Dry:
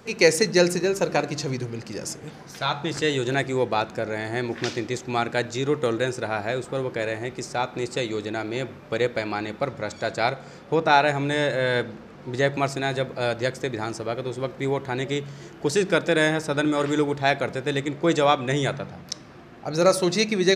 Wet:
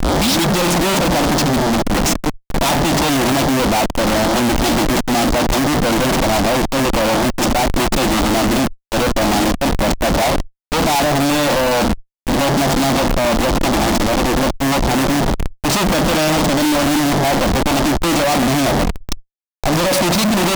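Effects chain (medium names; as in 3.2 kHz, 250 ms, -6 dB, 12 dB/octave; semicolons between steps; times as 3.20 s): tape start-up on the opening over 0.54 s; Schmitt trigger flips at -32.5 dBFS; static phaser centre 420 Hz, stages 6; fuzz box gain 44 dB, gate -53 dBFS; upward expansion 1.5:1, over -27 dBFS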